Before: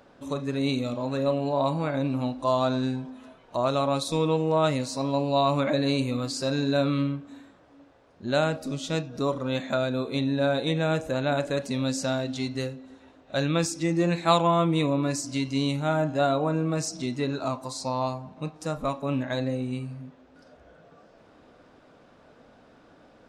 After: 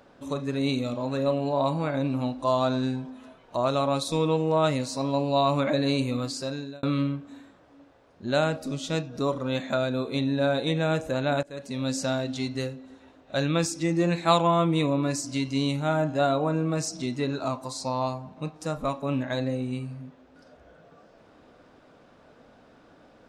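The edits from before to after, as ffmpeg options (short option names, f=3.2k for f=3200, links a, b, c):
-filter_complex "[0:a]asplit=3[a][b][c];[a]atrim=end=6.83,asetpts=PTS-STARTPTS,afade=t=out:st=6.23:d=0.6[d];[b]atrim=start=6.83:end=11.43,asetpts=PTS-STARTPTS,afade=t=in:d=0.004:c=hsin,afade=t=out:st=4.596:d=0.004:c=hsin:silence=0.0749894[e];[c]atrim=start=11.43,asetpts=PTS-STARTPTS,afade=t=in:d=0.51:silence=0.0749894[f];[d][e][f]concat=n=3:v=0:a=1"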